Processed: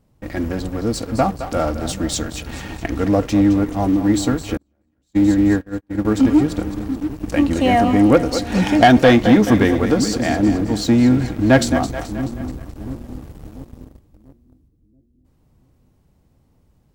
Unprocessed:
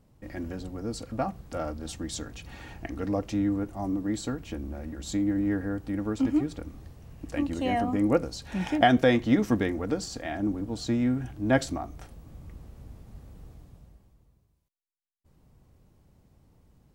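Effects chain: two-band feedback delay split 370 Hz, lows 686 ms, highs 215 ms, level -11 dB; waveshaping leveller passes 2; 4.57–6.05 s: gate -20 dBFS, range -43 dB; trim +5 dB

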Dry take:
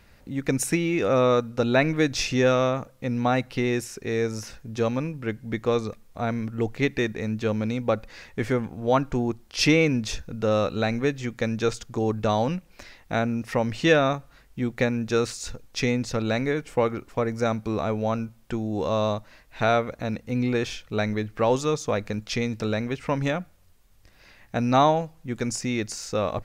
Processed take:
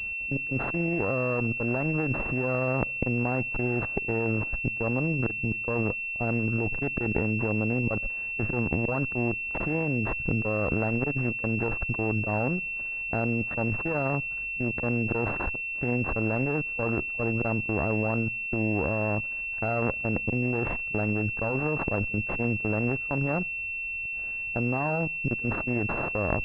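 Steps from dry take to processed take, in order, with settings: bass shelf 170 Hz +6.5 dB; compression 20:1, threshold -21 dBFS, peak gain reduction 10 dB; slow attack 132 ms; level held to a coarse grid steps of 19 dB; Chebyshev shaper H 4 -7 dB, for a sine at -20.5 dBFS; class-D stage that switches slowly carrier 2.7 kHz; trim +8 dB

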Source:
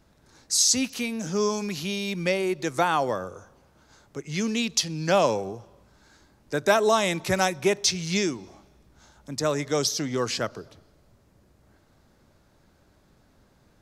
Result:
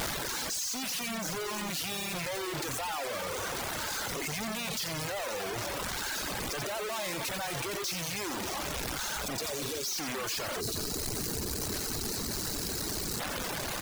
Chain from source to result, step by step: one-bit comparator; spectral replace 9.39–9.84 s, 600–3300 Hz both; on a send: frequency-shifting echo 88 ms, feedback 49%, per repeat -35 Hz, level -6.5 dB; on the sum: time-frequency box 10.60–13.20 s, 490–3800 Hz -10 dB; bass shelf 370 Hz -10.5 dB; in parallel at 0 dB: compressor with a negative ratio -34 dBFS, ratio -0.5; on the sum: reverb removal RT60 0.83 s; trim -6 dB

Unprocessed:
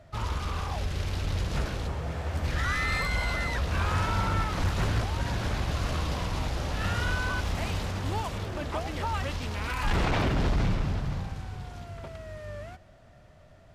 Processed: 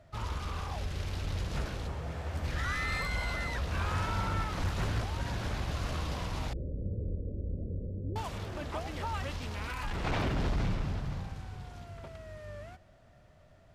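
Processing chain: 6.53–8.16 s: steep low-pass 550 Hz 72 dB/octave; 9.63–10.05 s: compression 4:1, threshold -28 dBFS, peak gain reduction 5.5 dB; trim -5 dB

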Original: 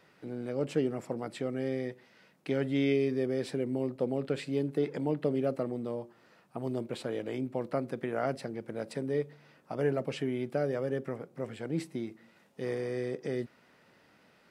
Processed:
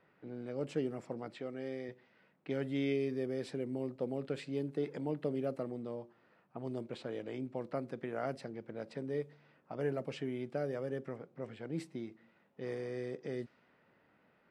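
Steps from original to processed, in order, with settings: 1.34–1.89 s: bass shelf 190 Hz -9 dB; level-controlled noise filter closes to 2.2 kHz, open at -26.5 dBFS; trim -6 dB

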